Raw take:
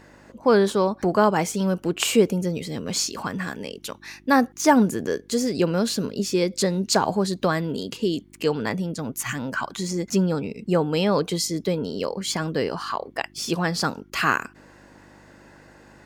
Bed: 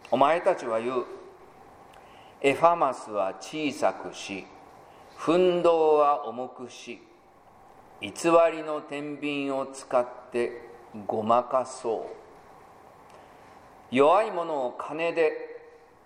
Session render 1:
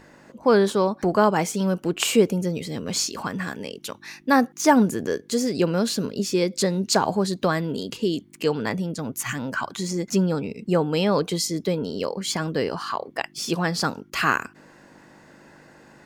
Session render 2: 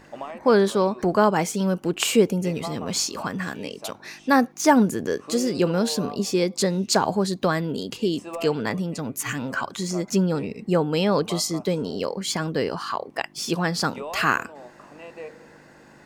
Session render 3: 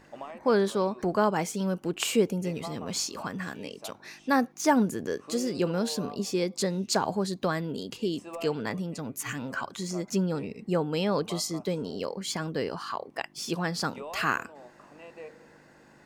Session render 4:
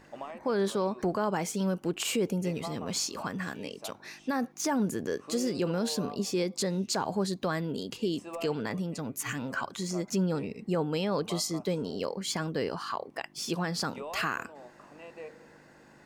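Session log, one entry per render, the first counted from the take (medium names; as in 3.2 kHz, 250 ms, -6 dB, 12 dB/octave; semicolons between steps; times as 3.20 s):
de-hum 50 Hz, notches 2
add bed -14.5 dB
trim -6 dB
peak limiter -20 dBFS, peak gain reduction 9 dB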